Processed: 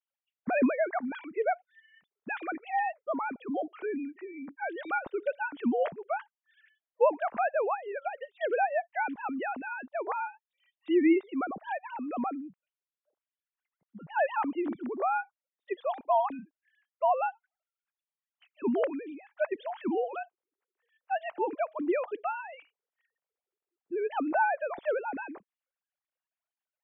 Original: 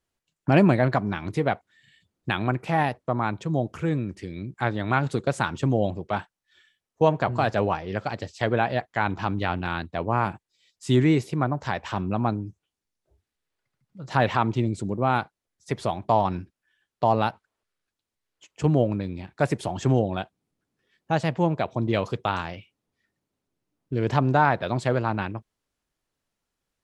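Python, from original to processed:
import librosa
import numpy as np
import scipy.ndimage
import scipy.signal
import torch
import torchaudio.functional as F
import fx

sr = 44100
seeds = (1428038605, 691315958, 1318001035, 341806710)

y = fx.sine_speech(x, sr)
y = y * librosa.db_to_amplitude(-6.5)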